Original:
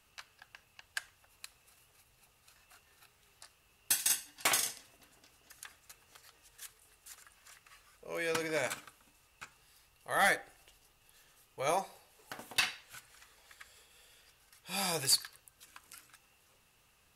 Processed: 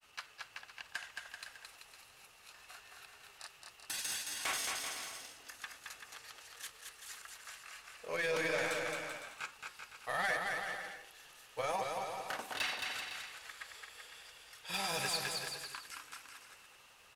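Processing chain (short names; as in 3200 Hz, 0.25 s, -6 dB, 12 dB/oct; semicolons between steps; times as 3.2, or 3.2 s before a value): limiter -27 dBFS, peak gain reduction 10 dB; overdrive pedal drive 14 dB, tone 5400 Hz, clips at -27 dBFS; grains, spray 18 ms, pitch spread up and down by 0 st; on a send: bouncing-ball echo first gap 0.22 s, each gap 0.75×, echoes 5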